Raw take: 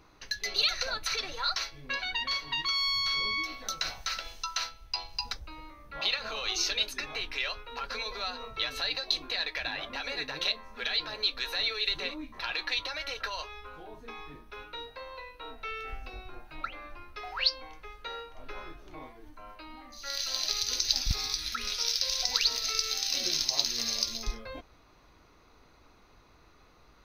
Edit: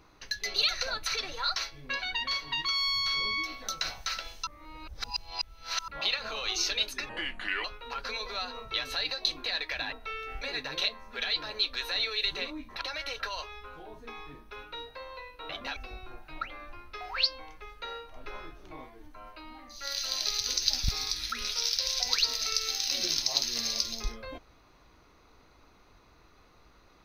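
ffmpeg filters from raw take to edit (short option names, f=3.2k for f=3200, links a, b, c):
-filter_complex "[0:a]asplit=10[a][b][c][d][e][f][g][h][i][j];[a]atrim=end=4.472[k];[b]atrim=start=4.468:end=5.882,asetpts=PTS-STARTPTS,areverse[l];[c]atrim=start=5.878:end=7.094[m];[d]atrim=start=7.09:end=7.5,asetpts=PTS-STARTPTS,asetrate=32634,aresample=44100[n];[e]atrim=start=7.496:end=9.782[o];[f]atrim=start=15.498:end=15.992[p];[g]atrim=start=10.048:end=12.452[q];[h]atrim=start=12.818:end=15.502[r];[i]atrim=start=9.778:end=10.052[s];[j]atrim=start=15.988[t];[k][l]acrossfade=d=0.004:c1=hsin:c2=hsin[u];[u][m]acrossfade=d=0.004:c1=hsin:c2=hsin[v];[v][n]acrossfade=d=0.004:c1=hsin:c2=hsin[w];[w][o]acrossfade=d=0.004:c1=hsin:c2=hsin[x];[x][p]acrossfade=d=0.004:c1=hsin:c2=hsin[y];[y][q]acrossfade=d=0.004:c1=hsin:c2=hsin[z];[z][r]acrossfade=d=0.004:c1=hsin:c2=hsin[aa];[aa][s]acrossfade=d=0.004:c1=hsin:c2=hsin[ab];[ab][t]acrossfade=d=0.004:c1=hsin:c2=hsin"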